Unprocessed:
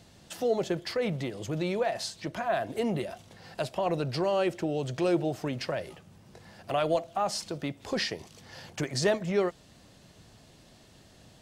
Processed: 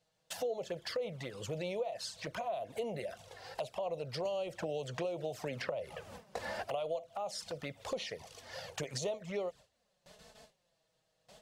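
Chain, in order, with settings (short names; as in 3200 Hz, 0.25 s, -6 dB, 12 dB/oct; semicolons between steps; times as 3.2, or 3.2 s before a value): gate with hold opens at -44 dBFS; resonant low shelf 410 Hz -6 dB, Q 3; compressor 5:1, threshold -37 dBFS, peak gain reduction 17 dB; envelope flanger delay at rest 6.5 ms, full sweep at -35.5 dBFS; 4.25–6.64 three-band squash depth 100%; gain +3 dB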